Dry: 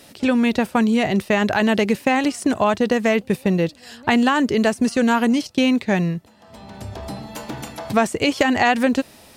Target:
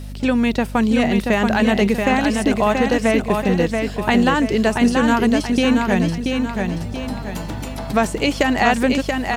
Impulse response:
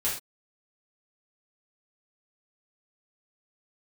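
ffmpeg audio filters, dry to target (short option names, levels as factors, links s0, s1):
-af "acrusher=bits=9:mix=0:aa=0.000001,aecho=1:1:681|1362|2043|2724|3405:0.596|0.25|0.105|0.0441|0.0185,aeval=exprs='val(0)+0.0316*(sin(2*PI*50*n/s)+sin(2*PI*2*50*n/s)/2+sin(2*PI*3*50*n/s)/3+sin(2*PI*4*50*n/s)/4+sin(2*PI*5*50*n/s)/5)':c=same"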